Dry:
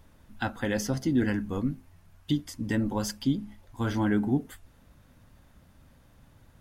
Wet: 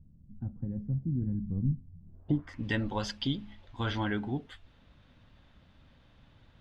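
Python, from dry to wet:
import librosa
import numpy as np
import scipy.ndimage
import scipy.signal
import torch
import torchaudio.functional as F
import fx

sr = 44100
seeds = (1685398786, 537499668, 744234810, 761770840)

y = fx.dynamic_eq(x, sr, hz=250.0, q=1.0, threshold_db=-39.0, ratio=4.0, max_db=-7)
y = fx.rider(y, sr, range_db=10, speed_s=0.5)
y = fx.filter_sweep_lowpass(y, sr, from_hz=170.0, to_hz=3500.0, start_s=1.99, end_s=2.66, q=2.3)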